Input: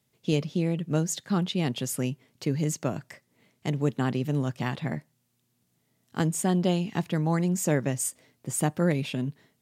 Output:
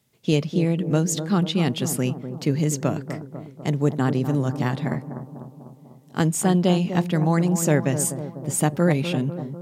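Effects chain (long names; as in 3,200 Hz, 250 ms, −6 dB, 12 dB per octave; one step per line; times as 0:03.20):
0:03.67–0:04.94: parametric band 2,700 Hz −5.5 dB 0.84 octaves
bucket-brigade delay 248 ms, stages 2,048, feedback 60%, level −9.5 dB
level +5 dB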